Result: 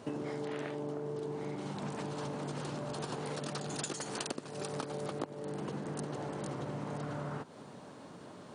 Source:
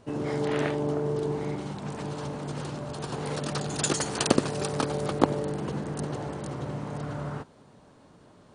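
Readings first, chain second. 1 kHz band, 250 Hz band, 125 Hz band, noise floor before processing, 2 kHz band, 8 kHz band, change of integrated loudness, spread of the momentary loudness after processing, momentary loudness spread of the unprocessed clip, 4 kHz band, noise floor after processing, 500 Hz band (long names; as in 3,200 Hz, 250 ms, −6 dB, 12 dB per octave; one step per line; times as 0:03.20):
−8.5 dB, −9.0 dB, −9.5 dB, −56 dBFS, −8.5 dB, −10.0 dB, −9.0 dB, 6 LU, 9 LU, −9.5 dB, −51 dBFS, −9.0 dB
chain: high-pass filter 140 Hz 12 dB per octave
downward compressor 12 to 1, threshold −41 dBFS, peak gain reduction 27 dB
level +5.5 dB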